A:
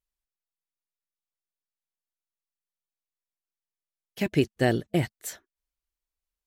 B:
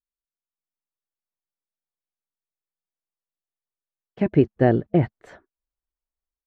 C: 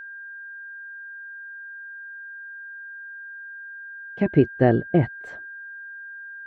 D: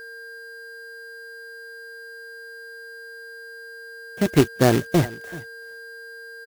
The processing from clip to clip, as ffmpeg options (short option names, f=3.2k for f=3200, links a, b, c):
-af "dynaudnorm=f=300:g=3:m=10dB,agate=range=-9dB:threshold=-49dB:ratio=16:detection=peak,lowpass=1.2k,volume=-1.5dB"
-af "aeval=exprs='val(0)+0.0158*sin(2*PI*1600*n/s)':c=same"
-af "acrusher=bits=2:mode=log:mix=0:aa=0.000001,aeval=exprs='val(0)+0.00631*sin(2*PI*460*n/s)':c=same,aecho=1:1:381:0.112"